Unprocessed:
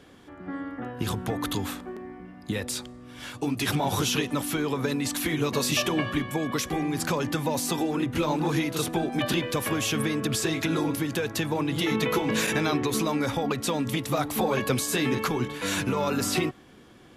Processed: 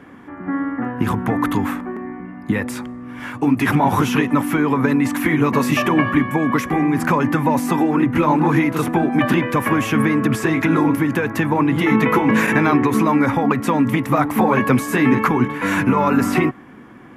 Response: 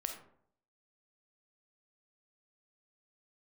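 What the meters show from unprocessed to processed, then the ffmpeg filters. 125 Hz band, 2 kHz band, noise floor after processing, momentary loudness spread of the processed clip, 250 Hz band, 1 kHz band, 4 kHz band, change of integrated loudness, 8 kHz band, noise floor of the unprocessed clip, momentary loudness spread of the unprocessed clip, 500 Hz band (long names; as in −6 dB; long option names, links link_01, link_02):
+9.0 dB, +10.0 dB, −40 dBFS, 8 LU, +11.5 dB, +12.0 dB, −3.0 dB, +9.5 dB, −3.5 dB, −51 dBFS, 9 LU, +7.0 dB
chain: -af "equalizer=frequency=125:width_type=o:width=1:gain=5,equalizer=frequency=250:width_type=o:width=1:gain=11,equalizer=frequency=1000:width_type=o:width=1:gain=10,equalizer=frequency=2000:width_type=o:width=1:gain=10,equalizer=frequency=4000:width_type=o:width=1:gain=-10,equalizer=frequency=8000:width_type=o:width=1:gain=-4,volume=1.5dB"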